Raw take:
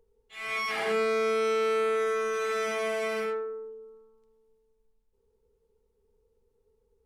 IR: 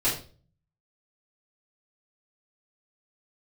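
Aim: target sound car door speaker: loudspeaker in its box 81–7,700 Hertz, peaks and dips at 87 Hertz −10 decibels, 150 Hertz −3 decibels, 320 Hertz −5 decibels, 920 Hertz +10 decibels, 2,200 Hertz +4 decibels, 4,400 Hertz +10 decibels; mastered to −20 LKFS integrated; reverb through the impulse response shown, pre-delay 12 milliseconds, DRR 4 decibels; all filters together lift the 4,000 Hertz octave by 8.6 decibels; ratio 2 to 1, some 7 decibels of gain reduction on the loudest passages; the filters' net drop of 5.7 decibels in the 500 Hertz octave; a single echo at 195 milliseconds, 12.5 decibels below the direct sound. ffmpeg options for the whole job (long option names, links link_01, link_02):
-filter_complex "[0:a]equalizer=frequency=500:width_type=o:gain=-6.5,equalizer=frequency=4000:width_type=o:gain=6,acompressor=threshold=-40dB:ratio=2,aecho=1:1:195:0.237,asplit=2[link_01][link_02];[1:a]atrim=start_sample=2205,adelay=12[link_03];[link_02][link_03]afir=irnorm=-1:irlink=0,volume=-15dB[link_04];[link_01][link_04]amix=inputs=2:normalize=0,highpass=81,equalizer=frequency=87:width_type=q:width=4:gain=-10,equalizer=frequency=150:width_type=q:width=4:gain=-3,equalizer=frequency=320:width_type=q:width=4:gain=-5,equalizer=frequency=920:width_type=q:width=4:gain=10,equalizer=frequency=2200:width_type=q:width=4:gain=4,equalizer=frequency=4400:width_type=q:width=4:gain=10,lowpass=frequency=7700:width=0.5412,lowpass=frequency=7700:width=1.3066,volume=13.5dB"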